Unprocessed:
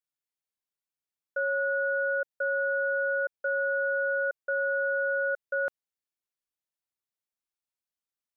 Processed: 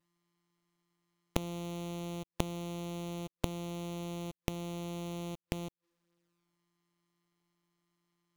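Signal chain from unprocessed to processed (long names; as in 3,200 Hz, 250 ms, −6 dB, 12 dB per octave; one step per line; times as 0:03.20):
samples sorted by size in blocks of 256 samples
gate with flip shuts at −31 dBFS, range −26 dB
flanger swept by the level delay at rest 7 ms, full sweep at −51 dBFS
level +15 dB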